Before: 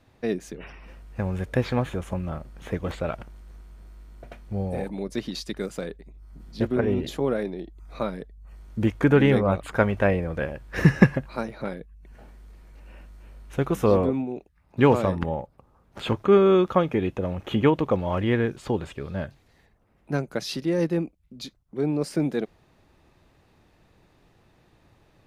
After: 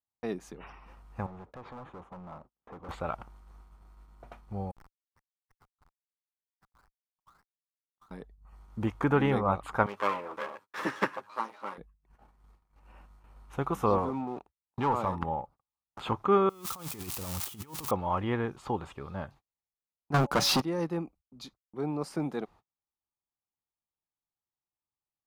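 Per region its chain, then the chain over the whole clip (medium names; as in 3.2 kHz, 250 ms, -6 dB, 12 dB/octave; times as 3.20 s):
1.26–2.89 s: compression 4:1, threshold -26 dBFS + band-pass filter 400 Hz, Q 0.6 + hard clipper -35.5 dBFS
4.71–8.11 s: Chebyshev band-pass 1–2.1 kHz, order 4 + Schmitt trigger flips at -39.5 dBFS
9.86–11.78 s: comb filter that takes the minimum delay 9.7 ms + high-pass 380 Hz + peaking EQ 730 Hz -9 dB 0.23 oct
13.98–15.16 s: waveshaping leveller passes 2 + peaking EQ 940 Hz +4.5 dB 0.36 oct + compression 2:1, threshold -29 dBFS
16.49–17.91 s: zero-crossing glitches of -16 dBFS + peaking EQ 660 Hz -8 dB 2.9 oct + compressor with a negative ratio -31 dBFS, ratio -0.5
20.14–20.62 s: waveshaping leveller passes 5 + de-hum 283 Hz, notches 3
whole clip: gate -45 dBFS, range -38 dB; high-order bell 1 kHz +10 dB 1 oct; trim -8 dB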